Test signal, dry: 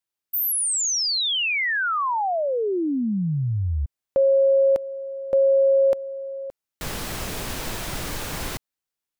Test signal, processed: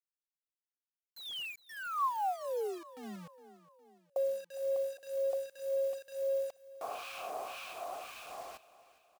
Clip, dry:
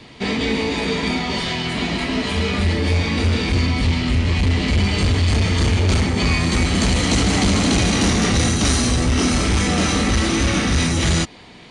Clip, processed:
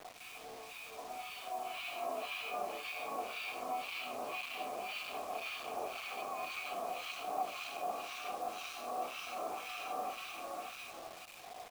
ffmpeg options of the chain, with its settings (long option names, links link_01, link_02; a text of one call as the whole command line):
ffmpeg -i in.wav -filter_complex "[0:a]highpass=420,areverse,acompressor=threshold=-32dB:ratio=10:attack=0.99:release=31:knee=1:detection=rms,areverse,alimiter=level_in=8.5dB:limit=-24dB:level=0:latency=1:release=46,volume=-8.5dB,dynaudnorm=framelen=180:gausssize=17:maxgain=9dB,asplit=3[link_01][link_02][link_03];[link_01]bandpass=frequency=730:width_type=q:width=8,volume=0dB[link_04];[link_02]bandpass=frequency=1090:width_type=q:width=8,volume=-6dB[link_05];[link_03]bandpass=frequency=2440:width_type=q:width=8,volume=-9dB[link_06];[link_04][link_05][link_06]amix=inputs=3:normalize=0,acrossover=split=1300[link_07][link_08];[link_07]aeval=exprs='val(0)*(1-1/2+1/2*cos(2*PI*1.9*n/s))':channel_layout=same[link_09];[link_08]aeval=exprs='val(0)*(1-1/2-1/2*cos(2*PI*1.9*n/s))':channel_layout=same[link_10];[link_09][link_10]amix=inputs=2:normalize=0,acrusher=bits=9:mix=0:aa=0.000001,aecho=1:1:411|822|1233|1644:0.126|0.0642|0.0327|0.0167,volume=8.5dB" out.wav